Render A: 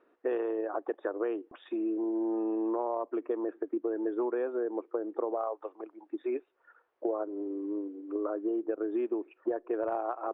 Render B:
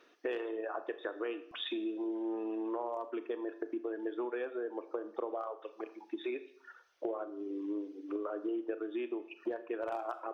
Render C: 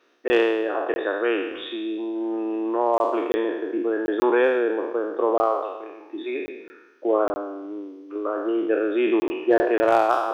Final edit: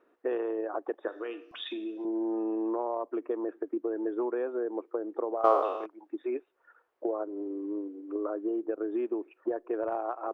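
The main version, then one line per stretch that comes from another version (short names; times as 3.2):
A
1.08–2.05 from B
5.44–5.86 from C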